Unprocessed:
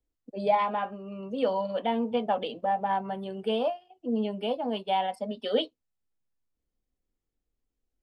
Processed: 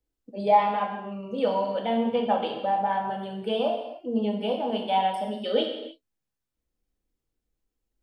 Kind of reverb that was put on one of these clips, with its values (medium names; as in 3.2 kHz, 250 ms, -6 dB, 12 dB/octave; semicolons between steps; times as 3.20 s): gated-style reverb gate 340 ms falling, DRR 1.5 dB